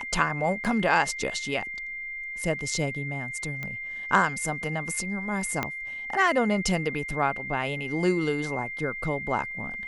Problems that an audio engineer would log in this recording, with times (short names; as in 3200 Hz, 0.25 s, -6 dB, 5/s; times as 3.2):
tone 2100 Hz -33 dBFS
0.64–0.65 gap 7.2 ms
3.63 pop -20 dBFS
5.63 pop -12 dBFS